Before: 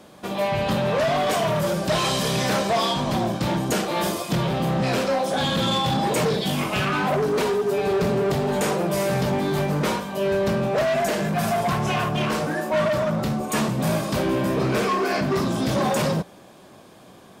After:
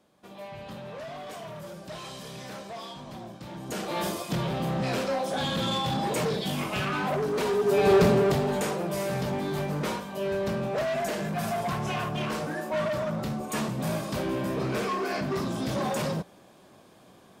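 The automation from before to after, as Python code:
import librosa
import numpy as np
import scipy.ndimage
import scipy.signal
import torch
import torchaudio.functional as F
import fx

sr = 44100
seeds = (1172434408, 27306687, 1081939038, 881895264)

y = fx.gain(x, sr, db=fx.line((3.5, -18.0), (3.91, -6.0), (7.38, -6.0), (7.94, 3.5), (8.72, -7.0)))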